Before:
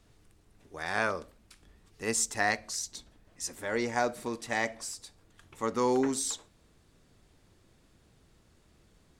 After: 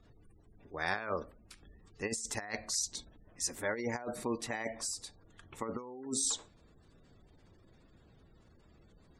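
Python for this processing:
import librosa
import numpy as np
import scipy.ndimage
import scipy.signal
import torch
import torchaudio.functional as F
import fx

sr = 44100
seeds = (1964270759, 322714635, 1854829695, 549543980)

y = fx.over_compress(x, sr, threshold_db=-33.0, ratio=-0.5)
y = fx.spec_gate(y, sr, threshold_db=-25, keep='strong')
y = y * 10.0 ** (-2.0 / 20.0)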